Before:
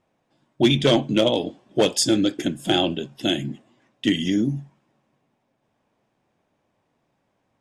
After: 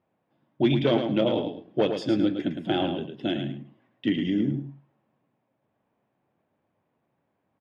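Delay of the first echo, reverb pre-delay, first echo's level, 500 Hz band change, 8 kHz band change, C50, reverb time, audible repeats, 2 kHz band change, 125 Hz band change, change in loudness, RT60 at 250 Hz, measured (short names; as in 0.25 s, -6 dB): 0.109 s, none, -7.0 dB, -3.5 dB, under -25 dB, none, none, 2, -6.5 dB, -3.5 dB, -4.5 dB, none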